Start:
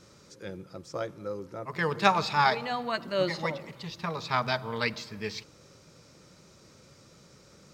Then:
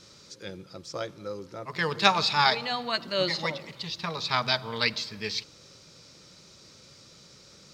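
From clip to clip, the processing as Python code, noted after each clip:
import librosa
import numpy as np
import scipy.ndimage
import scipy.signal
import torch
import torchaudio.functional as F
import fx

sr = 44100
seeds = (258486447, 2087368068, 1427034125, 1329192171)

y = fx.peak_eq(x, sr, hz=4200.0, db=10.5, octaves=1.5)
y = F.gain(torch.from_numpy(y), -1.0).numpy()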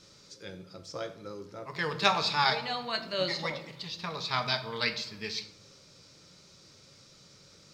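y = fx.room_shoebox(x, sr, seeds[0], volume_m3=76.0, walls='mixed', distance_m=0.34)
y = F.gain(torch.from_numpy(y), -4.5).numpy()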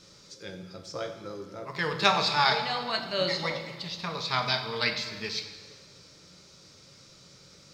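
y = fx.rev_plate(x, sr, seeds[1], rt60_s=1.8, hf_ratio=0.9, predelay_ms=0, drr_db=8.0)
y = F.gain(torch.from_numpy(y), 2.0).numpy()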